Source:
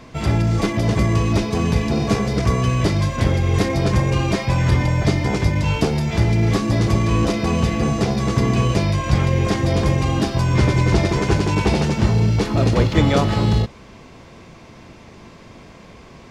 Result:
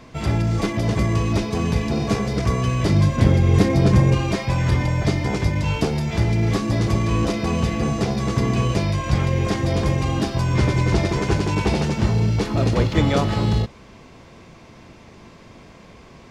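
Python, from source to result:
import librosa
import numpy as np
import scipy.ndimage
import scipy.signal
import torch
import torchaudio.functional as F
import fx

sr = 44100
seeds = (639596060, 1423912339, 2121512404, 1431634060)

y = fx.peak_eq(x, sr, hz=180.0, db=7.0, octaves=2.6, at=(2.89, 4.15))
y = y * librosa.db_to_amplitude(-2.5)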